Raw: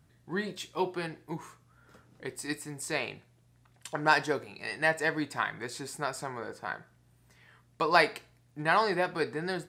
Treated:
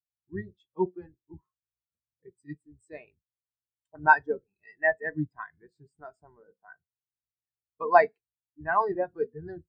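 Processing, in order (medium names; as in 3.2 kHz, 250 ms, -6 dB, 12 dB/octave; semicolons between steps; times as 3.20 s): octave divider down 1 oct, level -2 dB; spectral contrast expander 2.5:1; trim +1.5 dB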